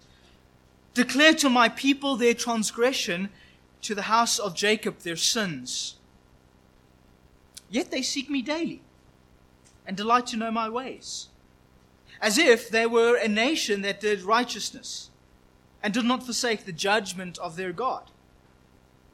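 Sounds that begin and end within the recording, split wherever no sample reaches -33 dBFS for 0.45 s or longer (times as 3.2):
0.96–3.27
3.83–5.9
7.57–8.74
9.88–11.23
12.22–15.02
15.84–17.99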